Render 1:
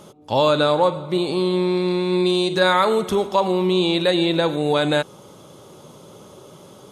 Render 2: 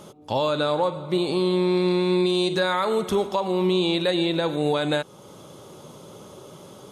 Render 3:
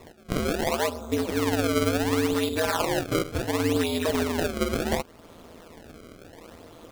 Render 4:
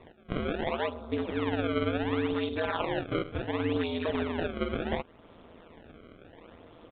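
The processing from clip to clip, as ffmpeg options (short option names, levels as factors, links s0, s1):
-af "alimiter=limit=0.224:level=0:latency=1:release=365"
-af "aeval=exprs='val(0)*sin(2*PI*82*n/s)':c=same,acrusher=samples=28:mix=1:aa=0.000001:lfo=1:lforange=44.8:lforate=0.7"
-af "aresample=8000,aresample=44100,volume=0.562"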